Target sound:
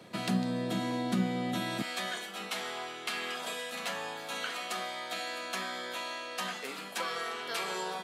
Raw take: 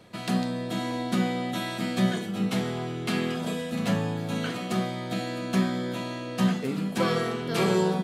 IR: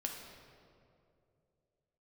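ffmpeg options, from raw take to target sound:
-filter_complex "[0:a]asetnsamples=nb_out_samples=441:pad=0,asendcmd='1.82 highpass f 840',highpass=140,acrossover=split=180[link_01][link_02];[link_02]acompressor=threshold=-33dB:ratio=10[link_03];[link_01][link_03]amix=inputs=2:normalize=0,volume=1.5dB"

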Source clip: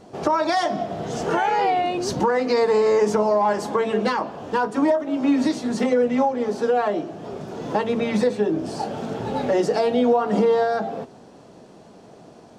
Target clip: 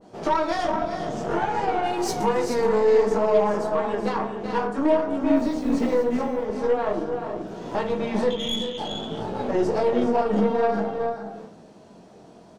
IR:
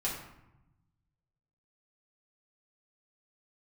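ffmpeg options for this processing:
-filter_complex "[0:a]asettb=1/sr,asplit=3[link_01][link_02][link_03];[link_01]atrim=end=1.834[link_04];[link_02]atrim=start=1.83:end=2.42,asetpts=PTS-STARTPTS,afade=type=in:duration=0.004:curve=qsin,afade=type=out:start_time=0.586:duration=0.004:curve=qsin,aemphasis=mode=production:type=75fm[link_05];[link_03]atrim=start=2.416[link_06];[link_04][link_05]acrossfade=duration=0.004:curve1=hsin:curve2=qsin[link_07];[link_07][link_06]acrossfade=duration=0.004:curve1=qsin:curve2=hsin,asettb=1/sr,asplit=3[link_08][link_09][link_10];[link_08]atrim=end=8.304[link_11];[link_09]atrim=start=8.3:end=8.78,asetpts=PTS-STARTPTS,afade=type=in:duration=0.004:curve=qsin,afade=type=out:start_time=0.476:duration=0.004:curve=qsin,lowpass=frequency=3100:width_type=q:width=0.5098,lowpass=frequency=3100:width_type=q:width=0.6013,lowpass=frequency=3100:width_type=q:width=0.9,lowpass=frequency=3100:width_type=q:width=2.563,afreqshift=-3700[link_12];[link_10]atrim=start=8.776[link_13];[link_11][link_12]acrossfade=duration=0.004:curve1=hsin:curve2=qsin[link_14];[link_14][link_13]acrossfade=duration=0.004:curve1=qsin:curve2=hsin,flanger=delay=16.5:depth=6.6:speed=0.53,asettb=1/sr,asplit=3[link_15][link_16][link_17];[link_15]atrim=end=5.364[link_18];[link_16]atrim=start=5.36:end=6.03,asetpts=PTS-STARTPTS,afade=type=in:duration=0.004:curve=qsin,afade=type=out:start_time=0.666:duration=0.004:curve=qsin,acrusher=bits=7:mix=0:aa=0.5[link_19];[link_17]atrim=start=6.026[link_20];[link_18][link_19]acrossfade=duration=0.004:curve1=hsin:curve2=qsin[link_21];[link_21][link_20]acrossfade=duration=0.004:curve1=qsin:curve2=hsin,aecho=1:1:381|424:0.316|0.376,asplit=2[link_22][link_23];[1:a]atrim=start_sample=2205,asetrate=57330,aresample=44100[link_24];[link_23][link_24]afir=irnorm=-1:irlink=0,volume=-5dB[link_25];[link_22][link_25]amix=inputs=2:normalize=0,aeval=exprs='0.596*(cos(1*acos(clip(val(0)/0.596,-1,1)))-cos(1*PI/2))+0.0376*(cos(8*acos(clip(val(0)/0.596,-1,1)))-cos(8*PI/2))':channel_layout=same,adynamicequalizer=threshold=0.0178:dfrequency=1700:dqfactor=0.7:tfrequency=1700:tqfactor=0.7:attack=5:release=100:ratio=0.375:range=3:mode=cutabove:tftype=highshelf,volume=-4dB"

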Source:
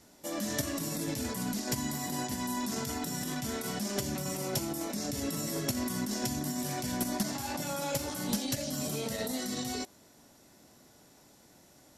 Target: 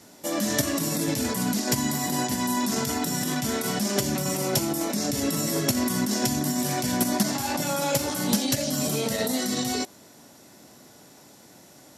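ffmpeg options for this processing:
ffmpeg -i in.wav -af "highpass=100,volume=8.5dB" out.wav

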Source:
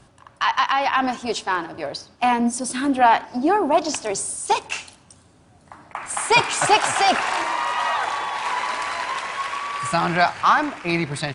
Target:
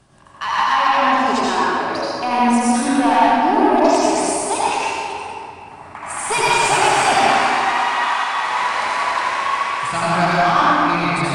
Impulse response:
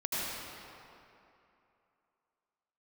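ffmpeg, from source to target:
-filter_complex "[0:a]asettb=1/sr,asplit=3[link_01][link_02][link_03];[link_01]atrim=end=7.364[link_04];[link_02]atrim=start=7.36:end=8.28,asetpts=PTS-STARTPTS,afade=type=in:duration=0.004:curve=qsin,afade=type=out:start_time=0.916:duration=0.004:curve=qsin,highpass=1000[link_05];[link_03]atrim=start=8.276[link_06];[link_04][link_05]acrossfade=duration=0.004:curve1=hsin:curve2=qsin[link_07];[link_07][link_06]acrossfade=duration=0.004:curve1=qsin:curve2=hsin,asoftclip=type=tanh:threshold=-11.5dB[link_08];[1:a]atrim=start_sample=2205[link_09];[link_08][link_09]afir=irnorm=-1:irlink=0,volume=-1dB"

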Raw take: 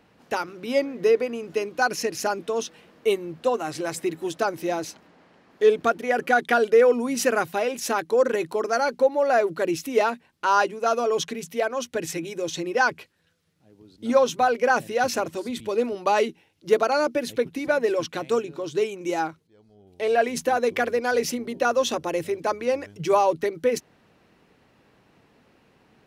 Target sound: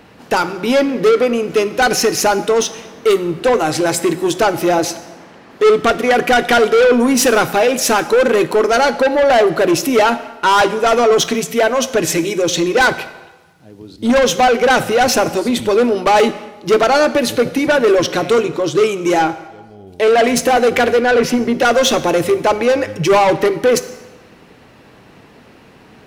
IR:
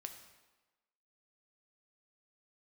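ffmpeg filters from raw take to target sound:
-filter_complex "[0:a]asettb=1/sr,asplit=3[link_01][link_02][link_03];[link_01]atrim=end=20.994[link_04];[link_02]atrim=start=20.99:end=21.54,asetpts=PTS-STARTPTS,afade=type=in:duration=0.004:curve=qsin,afade=type=out:start_time=0.546:duration=0.004:curve=qsin,bass=frequency=250:gain=2,treble=frequency=4000:gain=-13[link_05];[link_03]atrim=start=21.536[link_06];[link_04][link_05]acrossfade=duration=0.004:curve1=hsin:curve2=qsin[link_07];[link_07][link_06]acrossfade=duration=0.004:curve1=qsin:curve2=hsin,asoftclip=type=tanh:threshold=-23.5dB,asplit=2[link_08][link_09];[1:a]atrim=start_sample=2205[link_10];[link_09][link_10]afir=irnorm=-1:irlink=0,volume=5.5dB[link_11];[link_08][link_11]amix=inputs=2:normalize=0,volume=9dB"

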